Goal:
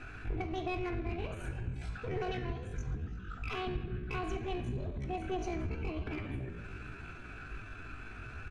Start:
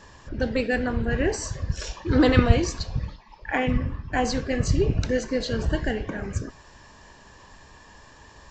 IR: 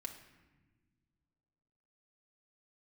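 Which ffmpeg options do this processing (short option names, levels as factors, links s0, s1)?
-filter_complex "[0:a]firequalizer=gain_entry='entry(100,0);entry(620,-10);entry(980,3);entry(2500,-7);entry(8000,-19)':delay=0.05:min_phase=1,acompressor=threshold=0.0126:ratio=8,bandreject=f=50:t=h:w=6,bandreject=f=100:t=h:w=6,bandreject=f=150:t=h:w=6,bandreject=f=200:t=h:w=6,aeval=exprs='clip(val(0),-1,0.0112)':c=same,highshelf=f=4300:g=-11.5[s0];[1:a]atrim=start_sample=2205[s1];[s0][s1]afir=irnorm=-1:irlink=0,asetrate=64194,aresample=44100,atempo=0.686977,volume=2.37"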